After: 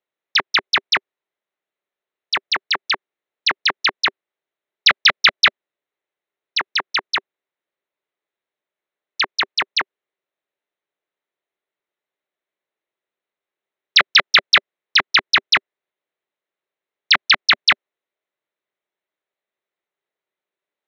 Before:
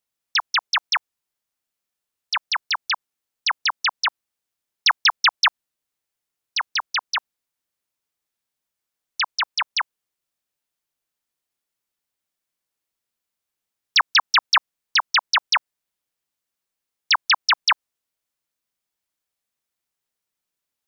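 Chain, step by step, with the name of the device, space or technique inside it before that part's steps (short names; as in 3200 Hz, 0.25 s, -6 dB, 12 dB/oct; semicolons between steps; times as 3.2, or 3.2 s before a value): Wiener smoothing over 9 samples; full-range speaker at full volume (Doppler distortion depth 0.96 ms; speaker cabinet 210–6200 Hz, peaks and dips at 240 Hz -5 dB, 390 Hz +8 dB, 590 Hz +6 dB, 2000 Hz +5 dB, 3900 Hz +8 dB); gain +1.5 dB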